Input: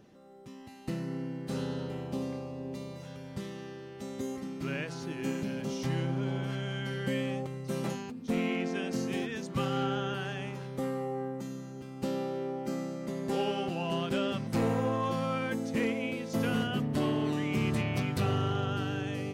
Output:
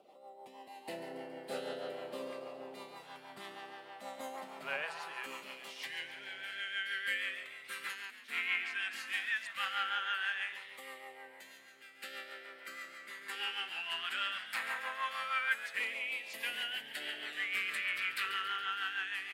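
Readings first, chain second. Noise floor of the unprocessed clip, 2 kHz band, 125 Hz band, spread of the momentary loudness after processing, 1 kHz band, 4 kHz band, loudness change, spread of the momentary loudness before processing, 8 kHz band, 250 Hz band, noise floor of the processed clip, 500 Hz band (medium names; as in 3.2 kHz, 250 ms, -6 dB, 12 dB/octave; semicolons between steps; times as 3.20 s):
-46 dBFS, +5.5 dB, under -30 dB, 15 LU, -4.0 dB, +2.5 dB, -4.5 dB, 11 LU, -4.5 dB, -24.0 dB, -56 dBFS, -13.5 dB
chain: peaking EQ 6 kHz -13.5 dB 0.47 oct; high-pass sweep 710 Hz -> 1.7 kHz, 4.61–5.83 s; rotary cabinet horn 6.3 Hz; LFO notch saw down 0.19 Hz 270–1700 Hz; on a send: frequency-shifting echo 139 ms, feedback 57%, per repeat +94 Hz, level -12 dB; on the sum: trim +3.5 dB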